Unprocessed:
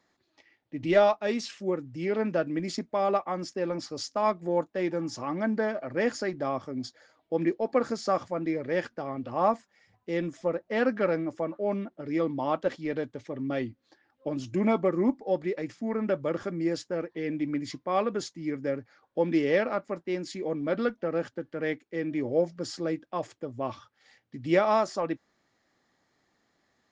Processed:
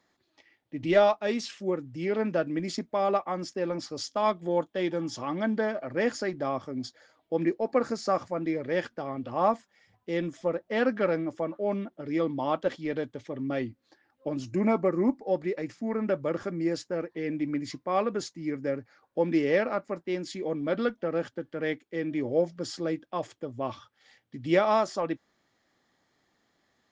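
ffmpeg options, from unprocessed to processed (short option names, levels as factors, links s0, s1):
-af "asetnsamples=n=441:p=0,asendcmd='4.07 equalizer g 13.5;5.61 equalizer g 2.5;7.45 equalizer g -4.5;8.38 equalizer g 4.5;13.44 equalizer g -1.5;14.44 equalizer g -13;15.11 equalizer g -3;20.04 equalizer g 4.5',equalizer=f=3300:t=o:w=0.24:g=2.5"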